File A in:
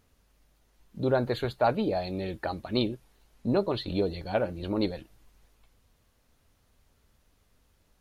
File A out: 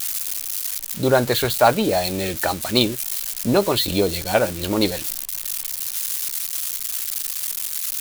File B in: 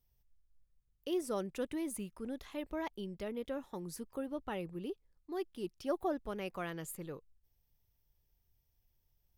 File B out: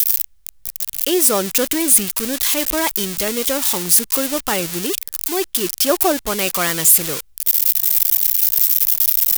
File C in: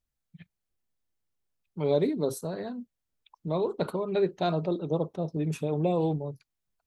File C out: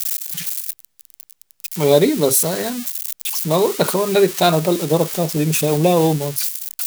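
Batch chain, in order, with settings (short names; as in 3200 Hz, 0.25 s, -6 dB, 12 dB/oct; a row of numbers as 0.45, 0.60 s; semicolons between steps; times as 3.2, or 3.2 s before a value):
switching spikes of -30.5 dBFS; tilt shelf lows -4 dB; normalise peaks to -2 dBFS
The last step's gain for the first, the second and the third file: +10.5, +19.0, +14.0 dB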